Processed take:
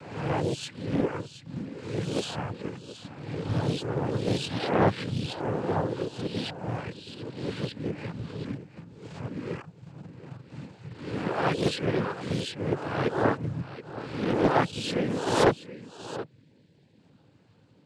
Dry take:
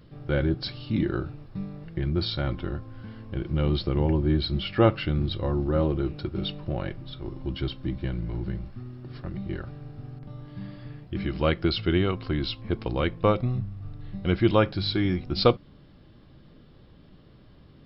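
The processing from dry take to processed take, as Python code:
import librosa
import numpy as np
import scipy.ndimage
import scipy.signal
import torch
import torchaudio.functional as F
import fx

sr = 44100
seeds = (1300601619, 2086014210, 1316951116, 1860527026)

p1 = fx.spec_swells(x, sr, rise_s=0.91)
p2 = fx.dereverb_blind(p1, sr, rt60_s=1.1)
p3 = fx.spec_erase(p2, sr, start_s=15.82, length_s=1.16, low_hz=540.0, high_hz=1500.0)
p4 = fx.quant_dither(p3, sr, seeds[0], bits=6, dither='none')
p5 = p3 + F.gain(torch.from_numpy(p4), -10.0).numpy()
p6 = fx.noise_vocoder(p5, sr, seeds[1], bands=8)
p7 = p6 + fx.echo_single(p6, sr, ms=725, db=-15.0, dry=0)
p8 = fx.dynamic_eq(p7, sr, hz=4500.0, q=0.78, threshold_db=-42.0, ratio=4.0, max_db=-6)
p9 = fx.doppler_dist(p8, sr, depth_ms=0.7)
y = F.gain(torch.from_numpy(p9), -4.0).numpy()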